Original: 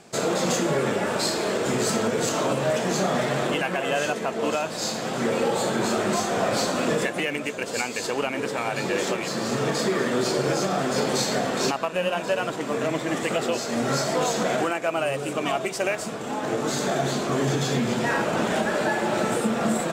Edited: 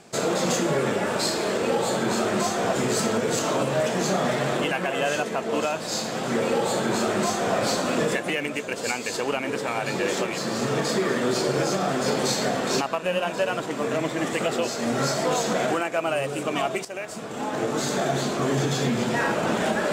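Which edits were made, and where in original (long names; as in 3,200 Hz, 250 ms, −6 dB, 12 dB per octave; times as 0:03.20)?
0:05.36–0:06.46: duplicate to 0:01.63
0:15.75–0:16.33: fade in, from −13.5 dB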